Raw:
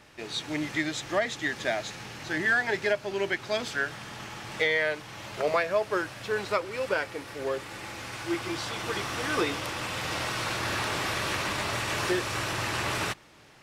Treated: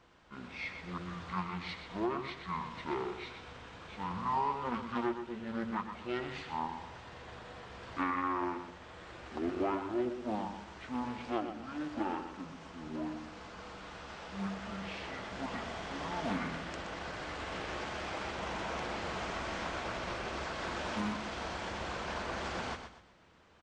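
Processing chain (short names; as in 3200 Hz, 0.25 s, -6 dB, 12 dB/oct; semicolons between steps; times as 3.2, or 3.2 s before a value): notches 50/100/150/200/250/300/350/400 Hz; on a send: feedback echo 71 ms, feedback 33%, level -8.5 dB; on the sum: speed mistake 78 rpm record played at 45 rpm; Doppler distortion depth 0.31 ms; gain -8.5 dB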